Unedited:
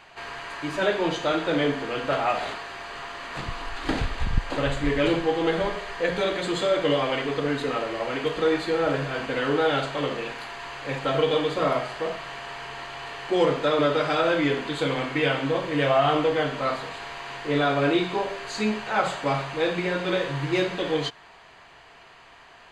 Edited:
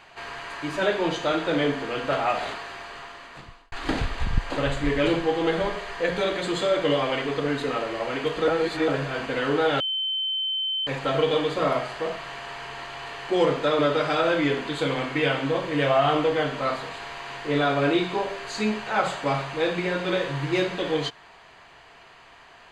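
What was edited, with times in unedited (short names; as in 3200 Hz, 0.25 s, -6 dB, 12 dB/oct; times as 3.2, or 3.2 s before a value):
2.68–3.72 fade out
8.48–8.88 reverse
9.8–10.87 bleep 3080 Hz -24 dBFS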